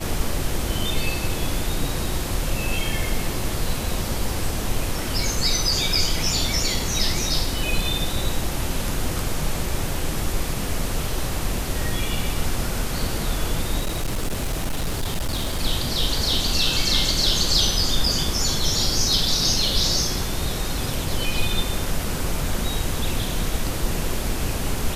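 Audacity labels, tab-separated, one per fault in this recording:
13.800000	15.600000	clipped -20 dBFS

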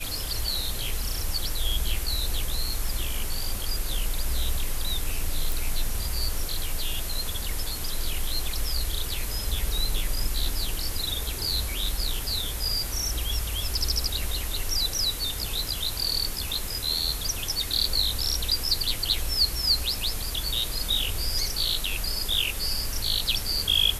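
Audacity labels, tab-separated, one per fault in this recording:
5.520000	5.520000	pop

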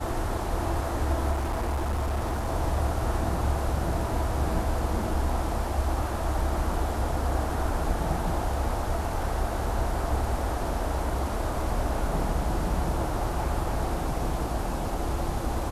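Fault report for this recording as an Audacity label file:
1.310000	2.500000	clipped -24 dBFS

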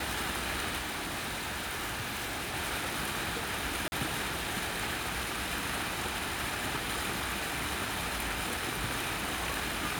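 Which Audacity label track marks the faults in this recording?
0.780000	2.550000	clipped -32.5 dBFS
3.880000	3.920000	dropout 40 ms

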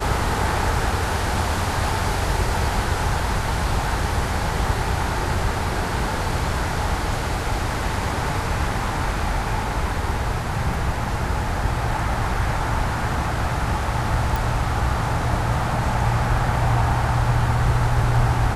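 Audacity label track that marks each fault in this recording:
14.360000	14.360000	pop

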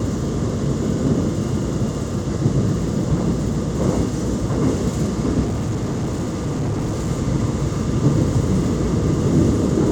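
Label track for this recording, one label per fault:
5.440000	7.090000	clipped -18.5 dBFS

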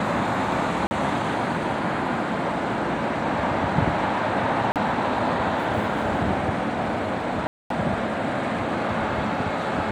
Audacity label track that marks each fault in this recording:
0.870000	0.910000	dropout 40 ms
4.720000	4.760000	dropout 38 ms
7.470000	7.700000	dropout 233 ms

